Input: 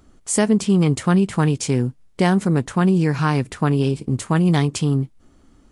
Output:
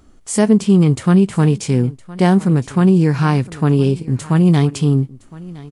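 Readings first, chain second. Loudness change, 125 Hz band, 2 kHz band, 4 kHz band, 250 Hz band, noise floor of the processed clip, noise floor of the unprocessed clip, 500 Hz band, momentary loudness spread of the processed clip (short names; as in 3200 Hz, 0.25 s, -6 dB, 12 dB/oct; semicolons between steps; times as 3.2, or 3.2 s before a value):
+4.5 dB, +5.0 dB, 0.0 dB, 0.0 dB, +4.5 dB, -46 dBFS, -54 dBFS, +3.5 dB, 8 LU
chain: echo 1.013 s -20.5 dB; harmonic-percussive split harmonic +7 dB; gain -2 dB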